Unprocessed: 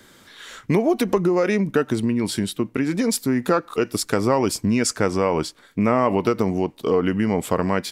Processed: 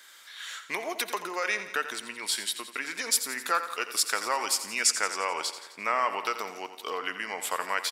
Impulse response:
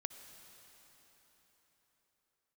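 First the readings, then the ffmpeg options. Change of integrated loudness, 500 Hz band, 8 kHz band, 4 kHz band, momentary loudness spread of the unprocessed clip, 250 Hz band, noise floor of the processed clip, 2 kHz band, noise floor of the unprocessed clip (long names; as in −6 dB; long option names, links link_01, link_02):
−7.5 dB, −16.0 dB, +1.5 dB, +1.5 dB, 5 LU, −25.5 dB, −50 dBFS, +0.5 dB, −52 dBFS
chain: -filter_complex "[0:a]highpass=1300,aecho=1:1:86|172|258|344|430|516|602:0.251|0.148|0.0874|0.0516|0.0304|0.018|0.0106,asplit=2[link_01][link_02];[1:a]atrim=start_sample=2205,atrim=end_sample=6174[link_03];[link_02][link_03]afir=irnorm=-1:irlink=0,volume=4.5dB[link_04];[link_01][link_04]amix=inputs=2:normalize=0,volume=-6dB"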